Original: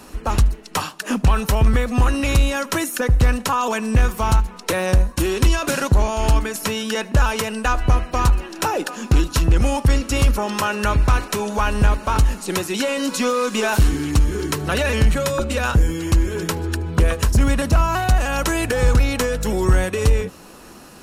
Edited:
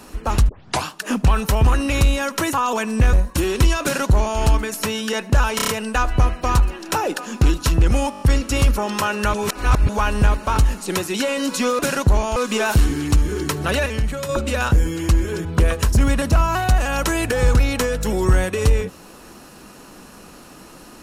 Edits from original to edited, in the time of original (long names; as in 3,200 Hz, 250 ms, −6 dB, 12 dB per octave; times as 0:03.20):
0:00.49: tape start 0.35 s
0:01.65–0:01.99: remove
0:02.87–0:03.48: remove
0:04.08–0:04.95: remove
0:05.64–0:06.21: duplicate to 0:13.39
0:07.38: stutter 0.03 s, 5 plays
0:09.81: stutter 0.02 s, 6 plays
0:10.94–0:11.49: reverse
0:14.89–0:15.32: clip gain −6 dB
0:16.48–0:16.85: remove